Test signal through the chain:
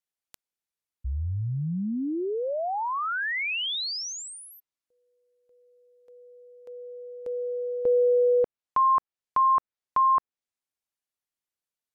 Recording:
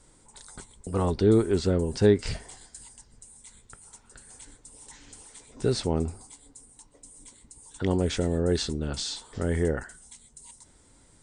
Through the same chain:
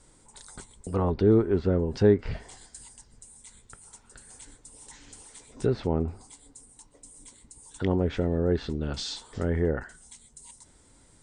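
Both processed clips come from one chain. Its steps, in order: low-pass that closes with the level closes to 1.8 kHz, closed at -21.5 dBFS

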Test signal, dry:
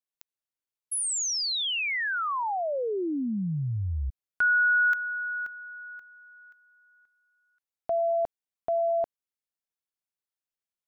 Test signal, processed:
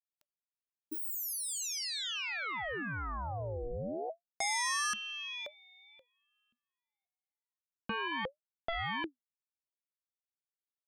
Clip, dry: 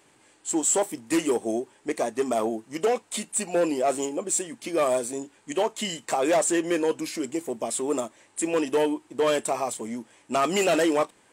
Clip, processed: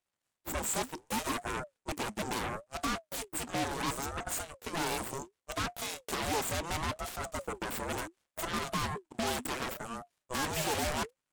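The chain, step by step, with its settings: Chebyshev shaper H 3 -14 dB, 5 -31 dB, 7 -23 dB, 8 -8 dB, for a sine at -15.5 dBFS; ring modulator with a swept carrier 460 Hz, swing 55%, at 0.7 Hz; trim -7.5 dB

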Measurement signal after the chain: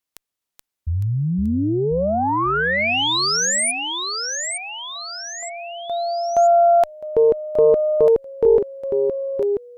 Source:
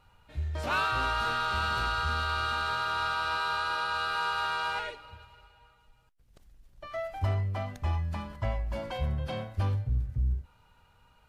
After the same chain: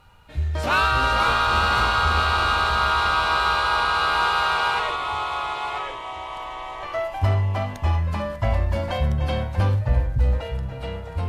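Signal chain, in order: ever faster or slower copies 407 ms, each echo -2 st, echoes 3, each echo -6 dB; Chebyshev shaper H 2 -23 dB, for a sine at -14.5 dBFS; trim +8.5 dB

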